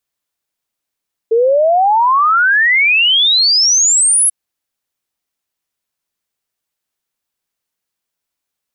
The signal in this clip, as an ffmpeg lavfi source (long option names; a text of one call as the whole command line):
ffmpeg -f lavfi -i "aevalsrc='0.398*clip(min(t,2.99-t)/0.01,0,1)*sin(2*PI*440*2.99/log(11000/440)*(exp(log(11000/440)*t/2.99)-1))':duration=2.99:sample_rate=44100" out.wav